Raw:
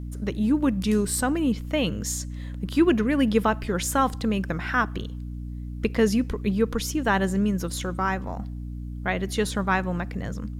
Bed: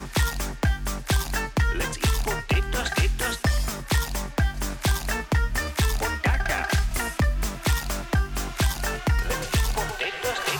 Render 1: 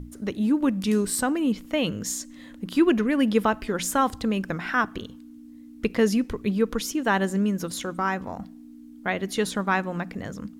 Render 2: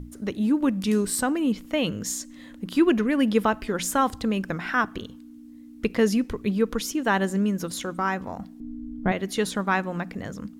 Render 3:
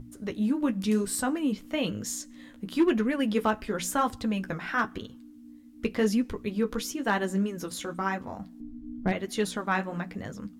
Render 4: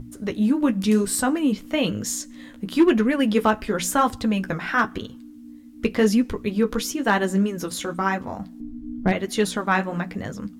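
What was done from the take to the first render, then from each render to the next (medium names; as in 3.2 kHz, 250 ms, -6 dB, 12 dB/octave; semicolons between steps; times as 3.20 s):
hum notches 60/120/180 Hz
8.60–9.12 s: tilt EQ -4.5 dB/octave
flange 0.97 Hz, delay 7.8 ms, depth 7.7 ms, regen -34%; overload inside the chain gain 16 dB
trim +6.5 dB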